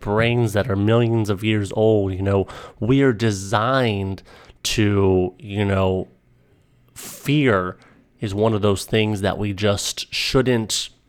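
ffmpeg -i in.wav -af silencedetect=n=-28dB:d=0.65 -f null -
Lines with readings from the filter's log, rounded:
silence_start: 6.03
silence_end: 6.98 | silence_duration: 0.95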